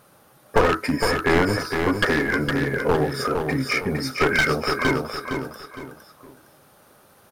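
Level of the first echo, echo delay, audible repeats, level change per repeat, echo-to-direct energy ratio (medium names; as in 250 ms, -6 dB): -5.5 dB, 461 ms, 3, -9.5 dB, -5.0 dB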